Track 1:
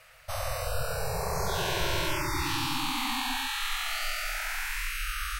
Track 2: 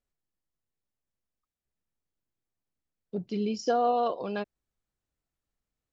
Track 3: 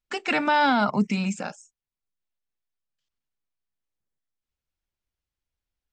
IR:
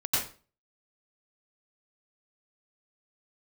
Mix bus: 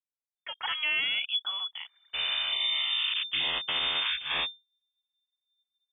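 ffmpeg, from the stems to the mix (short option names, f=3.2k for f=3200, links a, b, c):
-filter_complex "[0:a]adelay=1850,volume=2.5dB[a];[1:a]aecho=1:1:4.5:0.63,acrusher=bits=3:dc=4:mix=0:aa=0.000001,volume=-8dB,asplit=2[b][c];[2:a]adelay=350,volume=-8dB[d];[c]apad=whole_len=319650[e];[a][e]sidechaingate=range=-46dB:threshold=-39dB:ratio=16:detection=peak[f];[f][b][d]amix=inputs=3:normalize=0,anlmdn=0.0398,lowpass=f=3.1k:t=q:w=0.5098,lowpass=f=3.1k:t=q:w=0.6013,lowpass=f=3.1k:t=q:w=0.9,lowpass=f=3.1k:t=q:w=2.563,afreqshift=-3600,alimiter=limit=-20dB:level=0:latency=1:release=57"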